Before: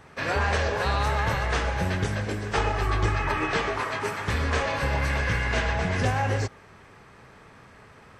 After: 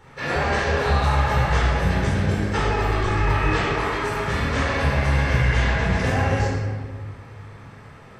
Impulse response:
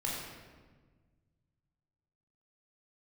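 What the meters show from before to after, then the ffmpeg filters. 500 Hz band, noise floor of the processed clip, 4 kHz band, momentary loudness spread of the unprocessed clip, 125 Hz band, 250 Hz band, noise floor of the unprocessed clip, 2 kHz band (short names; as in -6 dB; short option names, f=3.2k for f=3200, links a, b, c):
+4.0 dB, -44 dBFS, +2.5 dB, 4 LU, +6.0 dB, +6.5 dB, -51 dBFS, +3.0 dB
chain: -filter_complex "[0:a]asoftclip=type=tanh:threshold=-15dB[a];[1:a]atrim=start_sample=2205[b];[a][b]afir=irnorm=-1:irlink=0"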